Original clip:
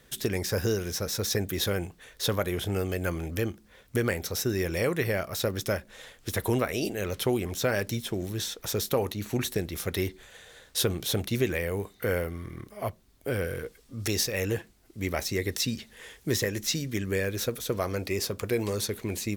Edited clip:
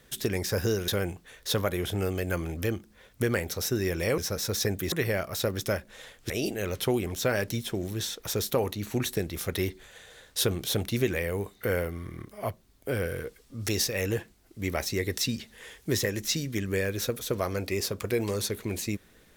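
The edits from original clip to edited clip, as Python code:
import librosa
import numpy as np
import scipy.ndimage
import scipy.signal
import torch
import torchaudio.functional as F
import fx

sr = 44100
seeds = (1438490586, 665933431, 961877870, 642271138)

y = fx.edit(x, sr, fx.move(start_s=0.88, length_s=0.74, to_s=4.92),
    fx.cut(start_s=6.3, length_s=0.39), tone=tone)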